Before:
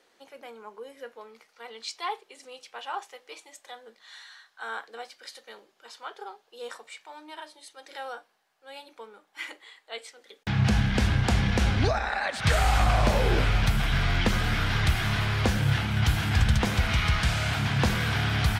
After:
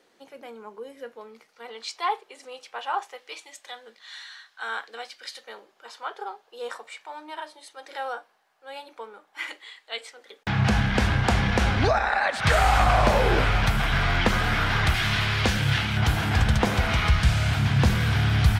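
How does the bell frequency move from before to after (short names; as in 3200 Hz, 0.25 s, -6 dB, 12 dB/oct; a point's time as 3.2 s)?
bell +6.5 dB 2.7 oct
180 Hz
from 1.69 s 930 Hz
from 3.18 s 3000 Hz
from 5.44 s 910 Hz
from 9.48 s 3300 Hz
from 10.01 s 1000 Hz
from 14.94 s 3200 Hz
from 15.97 s 610 Hz
from 17.1 s 78 Hz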